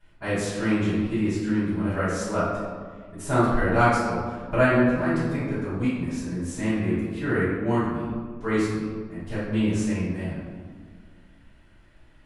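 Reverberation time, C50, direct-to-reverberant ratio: 1.8 s, -1.5 dB, -14.5 dB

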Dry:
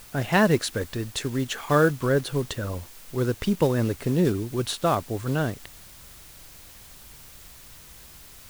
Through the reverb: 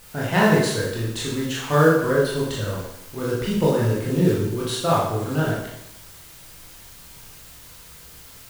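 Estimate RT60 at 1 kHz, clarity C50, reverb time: 0.80 s, 1.0 dB, 0.80 s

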